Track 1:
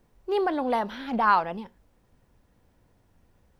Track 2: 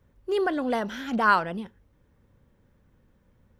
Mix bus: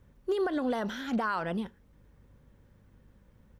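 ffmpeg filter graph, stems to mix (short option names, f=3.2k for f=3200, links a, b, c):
-filter_complex "[0:a]highpass=f=1.5k:w=0.5412,highpass=f=1.5k:w=1.3066,acompressor=threshold=-41dB:ratio=6,volume=-9.5dB,asplit=2[a][b];[1:a]aeval=exprs='val(0)+0.000794*(sin(2*PI*50*n/s)+sin(2*PI*2*50*n/s)/2+sin(2*PI*3*50*n/s)/3+sin(2*PI*4*50*n/s)/4+sin(2*PI*5*50*n/s)/5)':c=same,adelay=0.4,volume=1dB[c];[b]apad=whole_len=158713[d];[c][d]sidechaincompress=threshold=-58dB:ratio=5:attack=43:release=109[e];[a][e]amix=inputs=2:normalize=0,alimiter=limit=-21.5dB:level=0:latency=1:release=143"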